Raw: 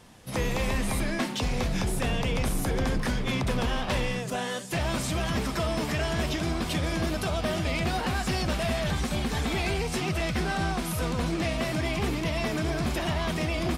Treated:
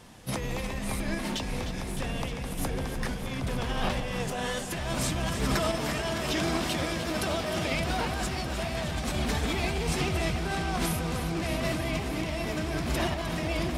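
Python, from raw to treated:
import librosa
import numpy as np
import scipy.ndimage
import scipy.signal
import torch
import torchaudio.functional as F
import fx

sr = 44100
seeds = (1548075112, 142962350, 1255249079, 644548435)

y = fx.highpass(x, sr, hz=210.0, slope=6, at=(5.57, 7.74))
y = fx.over_compress(y, sr, threshold_db=-32.0, ratio=-1.0)
y = fx.tremolo_random(y, sr, seeds[0], hz=3.5, depth_pct=55)
y = fx.echo_alternate(y, sr, ms=153, hz=920.0, feedback_pct=89, wet_db=-9)
y = y * librosa.db_to_amplitude(3.5)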